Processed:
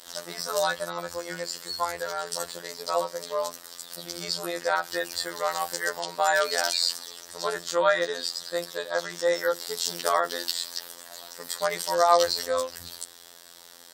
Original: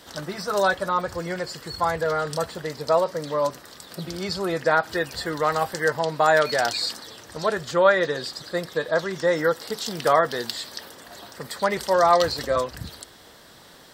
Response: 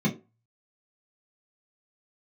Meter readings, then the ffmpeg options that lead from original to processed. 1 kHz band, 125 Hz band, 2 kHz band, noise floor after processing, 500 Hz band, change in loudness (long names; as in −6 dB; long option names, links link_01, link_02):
−4.0 dB, −14.5 dB, −4.0 dB, −49 dBFS, −5.0 dB, −4.0 dB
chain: -filter_complex "[0:a]bass=frequency=250:gain=-11,treble=frequency=4000:gain=10,bandreject=frequency=56.5:width_type=h:width=4,bandreject=frequency=113:width_type=h:width=4,bandreject=frequency=169.5:width_type=h:width=4,bandreject=frequency=226:width_type=h:width=4,bandreject=frequency=282.5:width_type=h:width=4,bandreject=frequency=339:width_type=h:width=4,asplit=2[link_01][link_02];[1:a]atrim=start_sample=2205,lowpass=3200[link_03];[link_02][link_03]afir=irnorm=-1:irlink=0,volume=-30.5dB[link_04];[link_01][link_04]amix=inputs=2:normalize=0,afftfilt=real='hypot(re,im)*cos(PI*b)':imag='0':win_size=2048:overlap=0.75,volume=-1dB"